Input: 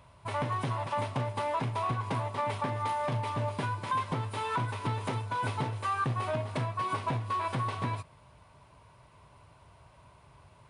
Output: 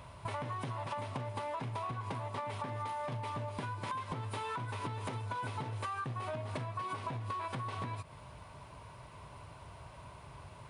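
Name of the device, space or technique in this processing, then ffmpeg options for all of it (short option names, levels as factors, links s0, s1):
serial compression, peaks first: -af "acompressor=threshold=0.0112:ratio=6,acompressor=threshold=0.00708:ratio=2.5,volume=2"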